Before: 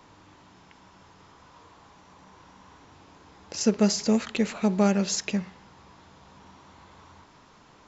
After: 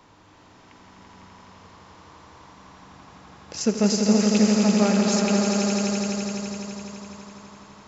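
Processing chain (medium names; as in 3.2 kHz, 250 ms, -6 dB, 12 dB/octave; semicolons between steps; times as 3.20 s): echo with a slow build-up 84 ms, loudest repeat 5, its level -6 dB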